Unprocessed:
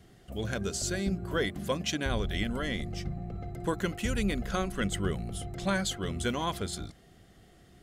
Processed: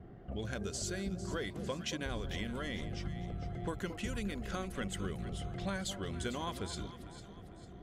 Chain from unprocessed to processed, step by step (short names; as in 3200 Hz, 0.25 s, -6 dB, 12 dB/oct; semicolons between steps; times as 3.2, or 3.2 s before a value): low-pass opened by the level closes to 970 Hz, open at -28 dBFS; compressor 3:1, threshold -45 dBFS, peak gain reduction 15.5 dB; echo with dull and thin repeats by turns 0.225 s, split 950 Hz, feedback 65%, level -9 dB; gain +5 dB